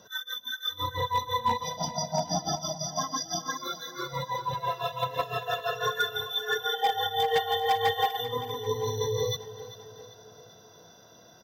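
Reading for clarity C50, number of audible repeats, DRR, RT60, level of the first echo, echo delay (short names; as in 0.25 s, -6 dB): none, 4, none, none, -15.0 dB, 0.392 s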